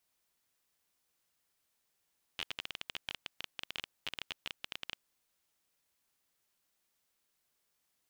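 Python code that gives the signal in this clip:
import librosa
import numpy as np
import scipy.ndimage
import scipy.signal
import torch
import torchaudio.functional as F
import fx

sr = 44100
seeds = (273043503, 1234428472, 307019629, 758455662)

y = fx.geiger_clicks(sr, seeds[0], length_s=2.63, per_s=18.0, level_db=-20.5)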